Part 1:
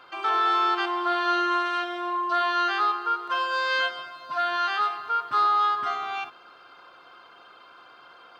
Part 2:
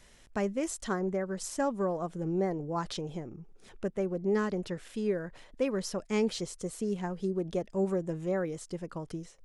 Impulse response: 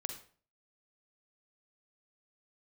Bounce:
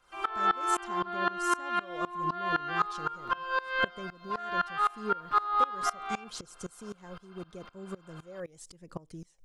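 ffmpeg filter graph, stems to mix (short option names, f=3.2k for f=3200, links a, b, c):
-filter_complex "[0:a]acrossover=split=3100[a][b];[b]acompressor=threshold=-52dB:ratio=4:attack=1:release=60[c];[a][c]amix=inputs=2:normalize=0,volume=1.5dB[d];[1:a]highshelf=f=3.4k:g=8,acompressor=threshold=-30dB:ratio=6,aphaser=in_gain=1:out_gain=1:delay=2:decay=0.43:speed=0.78:type=triangular,volume=-2.5dB,asplit=2[e][f];[f]volume=-21.5dB[g];[2:a]atrim=start_sample=2205[h];[g][h]afir=irnorm=-1:irlink=0[i];[d][e][i]amix=inputs=3:normalize=0,aeval=exprs='val(0)*pow(10,-22*if(lt(mod(-3.9*n/s,1),2*abs(-3.9)/1000),1-mod(-3.9*n/s,1)/(2*abs(-3.9)/1000),(mod(-3.9*n/s,1)-2*abs(-3.9)/1000)/(1-2*abs(-3.9)/1000))/20)':c=same"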